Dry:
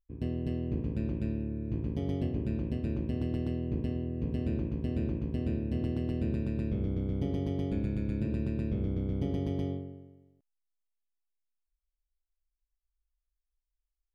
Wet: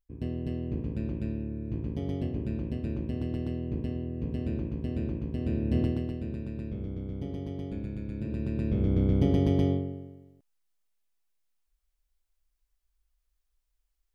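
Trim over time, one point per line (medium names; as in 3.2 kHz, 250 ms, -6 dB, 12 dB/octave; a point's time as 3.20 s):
5.37 s 0 dB
5.79 s +6.5 dB
6.20 s -4 dB
8.12 s -4 dB
9.02 s +8 dB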